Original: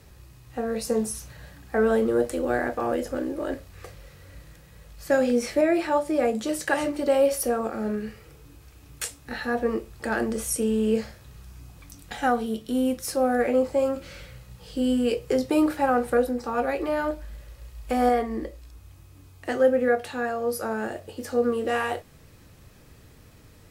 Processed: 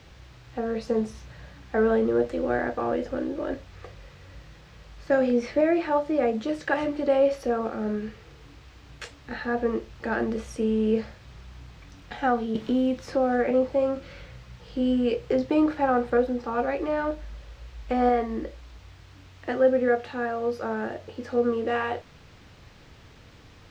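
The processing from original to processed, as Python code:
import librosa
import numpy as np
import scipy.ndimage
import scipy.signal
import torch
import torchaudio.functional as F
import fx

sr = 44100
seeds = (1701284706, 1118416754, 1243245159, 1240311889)

y = fx.quant_dither(x, sr, seeds[0], bits=8, dither='triangular')
y = fx.air_absorb(y, sr, metres=190.0)
y = fx.band_squash(y, sr, depth_pct=70, at=(12.55, 13.51))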